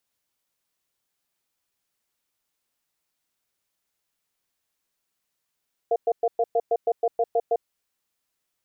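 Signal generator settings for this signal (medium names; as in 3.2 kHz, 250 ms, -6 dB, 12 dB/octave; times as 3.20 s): cadence 465 Hz, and 694 Hz, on 0.05 s, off 0.11 s, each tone -21 dBFS 1.67 s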